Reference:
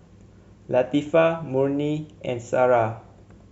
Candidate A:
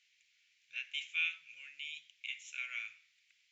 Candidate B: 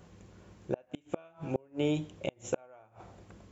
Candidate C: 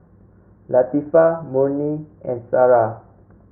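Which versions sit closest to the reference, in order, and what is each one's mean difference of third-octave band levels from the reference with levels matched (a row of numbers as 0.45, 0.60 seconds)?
C, B, A; 4.5, 10.0, 16.5 decibels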